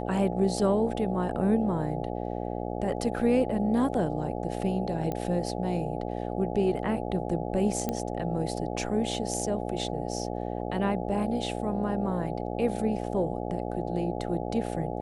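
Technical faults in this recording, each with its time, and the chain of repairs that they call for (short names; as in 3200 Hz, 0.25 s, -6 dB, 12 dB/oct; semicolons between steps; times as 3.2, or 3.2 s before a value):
buzz 60 Hz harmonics 14 -33 dBFS
5.12 pop -19 dBFS
7.89 pop -15 dBFS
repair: de-click; de-hum 60 Hz, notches 14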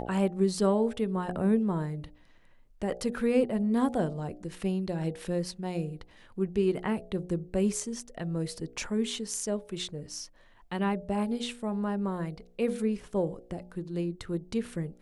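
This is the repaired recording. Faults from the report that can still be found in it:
none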